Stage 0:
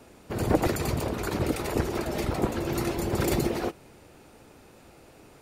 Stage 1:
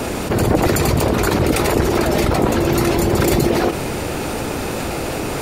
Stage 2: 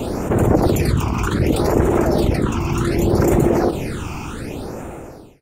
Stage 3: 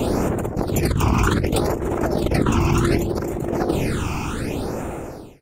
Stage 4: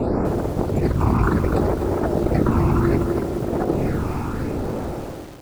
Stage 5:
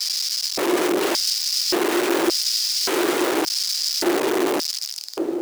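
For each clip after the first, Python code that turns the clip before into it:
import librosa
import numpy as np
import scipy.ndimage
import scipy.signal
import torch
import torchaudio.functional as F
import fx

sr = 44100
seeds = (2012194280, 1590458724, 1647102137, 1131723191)

y1 = fx.env_flatten(x, sr, amount_pct=70)
y1 = F.gain(torch.from_numpy(y1), 5.5).numpy()
y2 = fx.fade_out_tail(y1, sr, length_s=1.34)
y2 = fx.peak_eq(y2, sr, hz=11000.0, db=-5.0, octaves=3.0)
y2 = fx.phaser_stages(y2, sr, stages=8, low_hz=510.0, high_hz=4600.0, hz=0.66, feedback_pct=25)
y3 = fx.over_compress(y2, sr, threshold_db=-19.0, ratio=-0.5)
y4 = scipy.signal.lfilter(np.full(14, 1.0 / 14), 1.0, y3)
y4 = fx.echo_feedback(y4, sr, ms=205, feedback_pct=59, wet_db=-17)
y4 = fx.echo_crushed(y4, sr, ms=250, feedback_pct=35, bits=6, wet_db=-7.5)
y5 = y4 + 10.0 ** (-7.5 / 20.0) * np.pad(y4, (int(428 * sr / 1000.0), 0))[:len(y4)]
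y5 = (np.mod(10.0 ** (20.0 / 20.0) * y5 + 1.0, 2.0) - 1.0) / 10.0 ** (20.0 / 20.0)
y5 = fx.filter_lfo_highpass(y5, sr, shape='square', hz=0.87, low_hz=350.0, high_hz=5000.0, q=7.4)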